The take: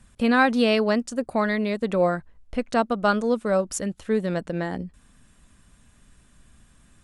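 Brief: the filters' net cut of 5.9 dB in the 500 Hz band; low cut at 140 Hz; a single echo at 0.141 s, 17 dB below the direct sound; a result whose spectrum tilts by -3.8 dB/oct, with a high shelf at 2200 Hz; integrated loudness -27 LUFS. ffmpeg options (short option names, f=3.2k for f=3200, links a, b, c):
-af "highpass=140,equalizer=f=500:t=o:g=-7.5,highshelf=f=2.2k:g=5,aecho=1:1:141:0.141,volume=-1.5dB"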